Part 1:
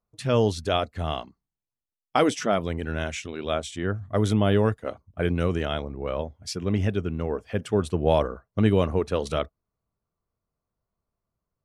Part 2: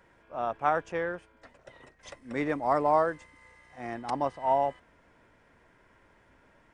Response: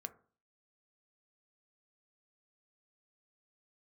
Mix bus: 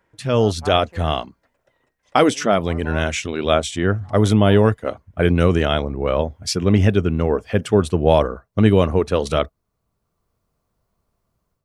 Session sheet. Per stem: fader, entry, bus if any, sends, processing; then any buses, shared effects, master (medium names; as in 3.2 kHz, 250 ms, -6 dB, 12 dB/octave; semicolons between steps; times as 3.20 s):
+2.5 dB, 0.00 s, no send, none
-5.0 dB, 0.00 s, no send, auto duck -13 dB, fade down 1.30 s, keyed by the first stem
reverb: none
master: level rider gain up to 10 dB